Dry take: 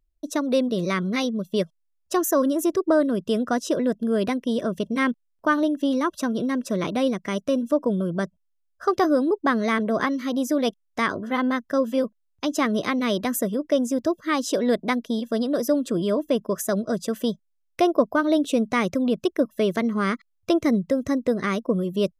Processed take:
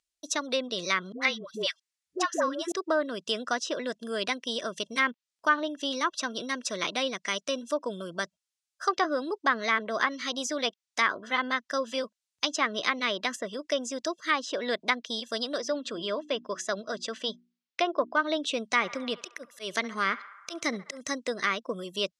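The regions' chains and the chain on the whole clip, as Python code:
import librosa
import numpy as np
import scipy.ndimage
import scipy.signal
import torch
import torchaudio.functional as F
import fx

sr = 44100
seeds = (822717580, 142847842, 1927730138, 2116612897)

y = fx.chain(x, sr, fx.peak_eq(hz=1900.0, db=4.5, octaves=0.67),
    fx.dispersion(late='highs', ms=95.0, hz=590.0), at=(1.12, 2.72))
y = fx.chain(y, sr, fx.lowpass(hz=3800.0, slope=12),
    fx.hum_notches(base_hz=60, count=6), at=(15.58, 18.17))
y = fx.chain(y, sr, fx.auto_swell(attack_ms=142.0),
    fx.echo_banded(ms=68, feedback_pct=75, hz=1200.0, wet_db=-17.0), at=(18.73, 21.01))
y = fx.weighting(y, sr, curve='ITU-R 468')
y = fx.env_lowpass_down(y, sr, base_hz=2100.0, full_db=-18.5)
y = y * librosa.db_to_amplitude(-2.5)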